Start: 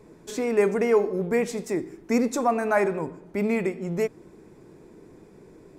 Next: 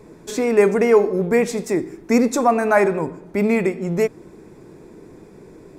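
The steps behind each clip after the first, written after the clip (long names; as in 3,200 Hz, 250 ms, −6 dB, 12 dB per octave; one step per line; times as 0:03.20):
notch filter 3,000 Hz, Q 21
level +6.5 dB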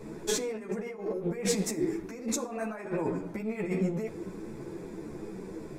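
compressor whose output falls as the input rises −27 dBFS, ratio −1
convolution reverb RT60 0.75 s, pre-delay 6 ms, DRR 11 dB
string-ensemble chorus
level −3.5 dB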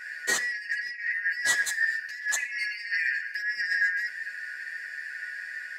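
band-splitting scrambler in four parts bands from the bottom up 3142
level +3 dB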